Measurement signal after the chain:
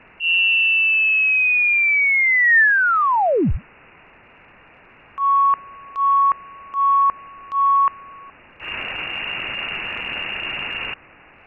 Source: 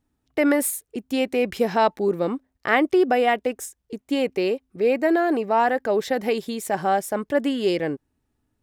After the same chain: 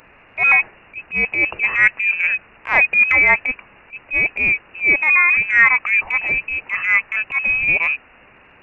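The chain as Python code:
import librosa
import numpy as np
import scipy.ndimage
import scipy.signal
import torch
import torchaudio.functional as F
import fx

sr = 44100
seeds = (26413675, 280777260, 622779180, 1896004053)

p1 = fx.quant_dither(x, sr, seeds[0], bits=6, dither='triangular')
p2 = x + F.gain(torch.from_numpy(p1), -7.0).numpy()
p3 = fx.freq_invert(p2, sr, carrier_hz=2800)
p4 = fx.transient(p3, sr, attack_db=-12, sustain_db=0)
p5 = fx.dynamic_eq(p4, sr, hz=1800.0, q=7.8, threshold_db=-39.0, ratio=4.0, max_db=5)
y = F.gain(torch.from_numpy(p5), 3.5).numpy()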